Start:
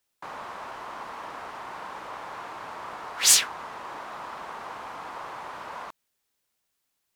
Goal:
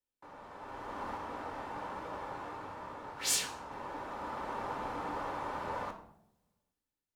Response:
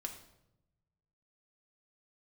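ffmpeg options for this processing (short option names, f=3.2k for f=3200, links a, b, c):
-filter_complex "[0:a]tiltshelf=f=690:g=6.5,dynaudnorm=f=150:g=11:m=14dB,asettb=1/sr,asplit=3[a][b][c];[a]atrim=end=1.174[d];[b]atrim=start=1.17:end=3.71,asetpts=PTS-STARTPTS,afade=t=in:d=0.004:c=qsin,afade=t=out:st=2.536:d=0.004:c=qsin,flanger=delay=16:depth=7.9:speed=1.2[e];[c]atrim=start=3.706[f];[d][e]acrossfade=d=0.004:c1=hsin:c2=qsin[g];[g][f]acrossfade=d=0.004:c1=qsin:c2=hsin[h];[1:a]atrim=start_sample=2205,asetrate=57330,aresample=44100[i];[h][i]afir=irnorm=-1:irlink=0,volume=-8.5dB"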